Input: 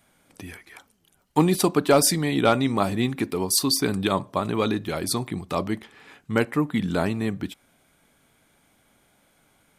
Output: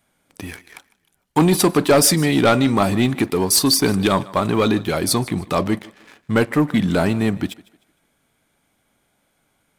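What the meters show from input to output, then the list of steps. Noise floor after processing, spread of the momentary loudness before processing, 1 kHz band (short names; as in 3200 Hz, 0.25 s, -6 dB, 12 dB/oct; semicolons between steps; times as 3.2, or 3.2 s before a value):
-67 dBFS, 11 LU, +4.5 dB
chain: sample leveller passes 2; on a send: thinning echo 0.153 s, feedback 34%, high-pass 200 Hz, level -20.5 dB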